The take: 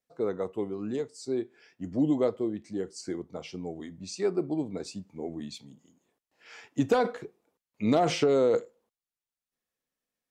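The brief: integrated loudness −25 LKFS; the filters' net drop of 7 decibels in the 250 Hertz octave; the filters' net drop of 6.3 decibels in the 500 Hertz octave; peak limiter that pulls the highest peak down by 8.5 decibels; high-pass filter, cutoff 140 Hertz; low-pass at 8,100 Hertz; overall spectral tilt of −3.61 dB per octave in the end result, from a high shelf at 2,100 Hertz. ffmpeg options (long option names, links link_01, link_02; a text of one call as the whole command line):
ffmpeg -i in.wav -af "highpass=140,lowpass=8100,equalizer=frequency=250:width_type=o:gain=-6.5,equalizer=frequency=500:width_type=o:gain=-6,highshelf=frequency=2100:gain=8,volume=12dB,alimiter=limit=-11dB:level=0:latency=1" out.wav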